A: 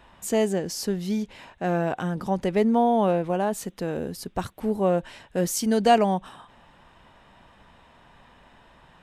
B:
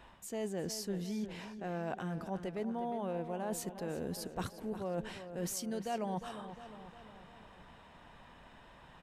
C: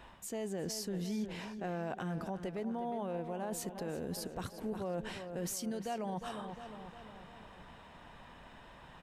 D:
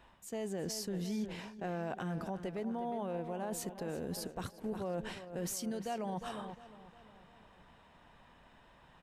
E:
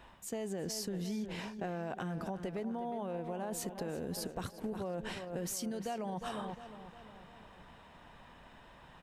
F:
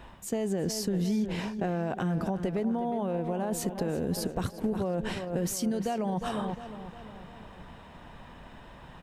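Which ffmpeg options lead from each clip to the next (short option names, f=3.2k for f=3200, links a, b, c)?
-filter_complex "[0:a]areverse,acompressor=threshold=-32dB:ratio=6,areverse,asplit=2[a][b];[b]adelay=355,lowpass=f=4.3k:p=1,volume=-10.5dB,asplit=2[c][d];[d]adelay=355,lowpass=f=4.3k:p=1,volume=0.55,asplit=2[e][f];[f]adelay=355,lowpass=f=4.3k:p=1,volume=0.55,asplit=2[g][h];[h]adelay=355,lowpass=f=4.3k:p=1,volume=0.55,asplit=2[i][j];[j]adelay=355,lowpass=f=4.3k:p=1,volume=0.55,asplit=2[k][l];[l]adelay=355,lowpass=f=4.3k:p=1,volume=0.55[m];[a][c][e][g][i][k][m]amix=inputs=7:normalize=0,volume=-3.5dB"
-af "alimiter=level_in=8dB:limit=-24dB:level=0:latency=1:release=87,volume=-8dB,volume=2.5dB"
-af "agate=range=-7dB:threshold=-43dB:ratio=16:detection=peak"
-af "acompressor=threshold=-40dB:ratio=6,volume=5dB"
-af "lowshelf=f=460:g=6,volume=5dB"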